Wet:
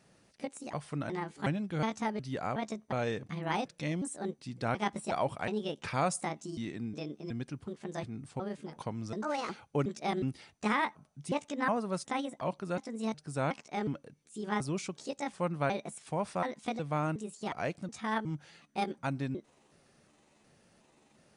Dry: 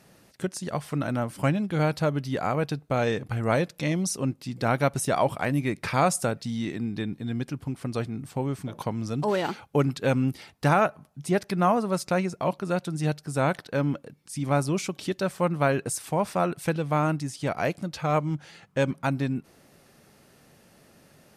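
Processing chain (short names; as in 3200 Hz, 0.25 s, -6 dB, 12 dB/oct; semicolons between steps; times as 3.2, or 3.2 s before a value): trilling pitch shifter +6.5 st, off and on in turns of 0.365 s; gain -8 dB; MP2 128 kbps 24000 Hz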